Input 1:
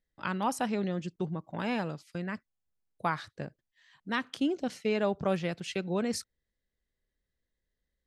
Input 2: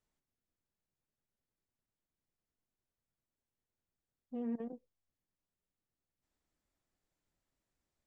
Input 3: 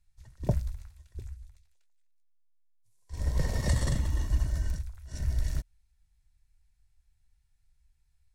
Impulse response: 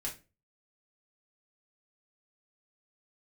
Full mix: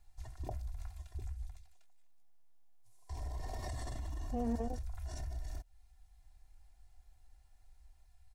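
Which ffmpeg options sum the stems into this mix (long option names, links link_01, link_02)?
-filter_complex "[1:a]volume=1dB[link_01];[2:a]aecho=1:1:2.9:0.81,acompressor=threshold=-34dB:ratio=2,volume=2dB,alimiter=level_in=10.5dB:limit=-24dB:level=0:latency=1:release=82,volume=-10.5dB,volume=0dB[link_02];[link_01][link_02]amix=inputs=2:normalize=0,equalizer=frequency=780:width=2.9:gain=14.5"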